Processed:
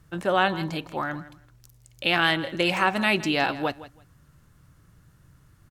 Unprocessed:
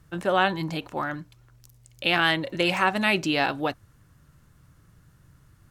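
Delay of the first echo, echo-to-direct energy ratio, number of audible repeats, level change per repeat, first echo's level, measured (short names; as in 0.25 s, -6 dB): 0.164 s, -16.5 dB, 2, -15.0 dB, -16.5 dB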